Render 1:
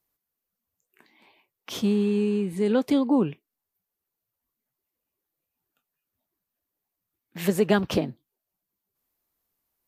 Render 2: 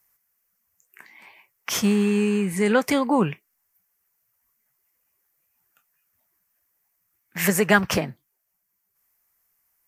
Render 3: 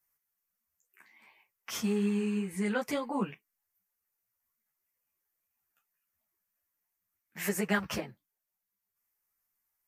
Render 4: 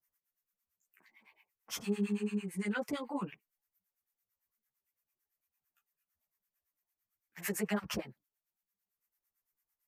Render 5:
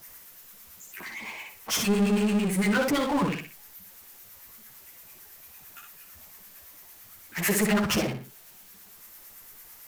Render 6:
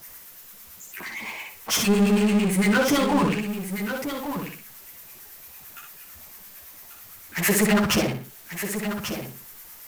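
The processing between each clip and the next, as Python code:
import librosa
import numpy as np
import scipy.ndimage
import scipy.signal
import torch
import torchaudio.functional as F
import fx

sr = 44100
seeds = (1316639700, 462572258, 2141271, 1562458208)

y1 = fx.curve_eq(x, sr, hz=(190.0, 270.0, 2000.0, 3800.0, 5600.0), db=(0, -7, 11, -3, 9))
y1 = fx.rider(y1, sr, range_db=10, speed_s=2.0)
y1 = F.gain(torch.from_numpy(y1), 4.5).numpy()
y2 = fx.ensemble(y1, sr)
y2 = F.gain(torch.from_numpy(y2), -8.5).numpy()
y3 = fx.harmonic_tremolo(y2, sr, hz=8.9, depth_pct=100, crossover_hz=870.0)
y4 = fx.echo_feedback(y3, sr, ms=61, feedback_pct=17, wet_db=-7.0)
y4 = fx.power_curve(y4, sr, exponent=0.5)
y4 = F.gain(torch.from_numpy(y4), 5.5).numpy()
y5 = y4 + 10.0 ** (-9.0 / 20.0) * np.pad(y4, (int(1140 * sr / 1000.0), 0))[:len(y4)]
y5 = F.gain(torch.from_numpy(y5), 4.0).numpy()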